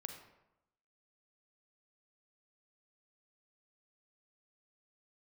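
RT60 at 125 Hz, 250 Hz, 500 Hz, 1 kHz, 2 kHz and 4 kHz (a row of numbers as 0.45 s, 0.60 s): 0.95 s, 0.95 s, 0.90 s, 0.90 s, 0.75 s, 0.55 s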